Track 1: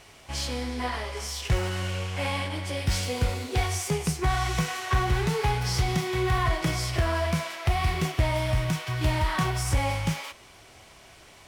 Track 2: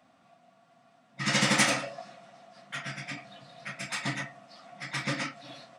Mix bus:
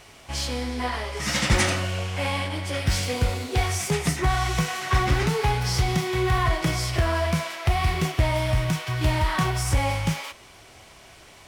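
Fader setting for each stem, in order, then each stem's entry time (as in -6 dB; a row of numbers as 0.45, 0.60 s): +2.5, 0.0 dB; 0.00, 0.00 s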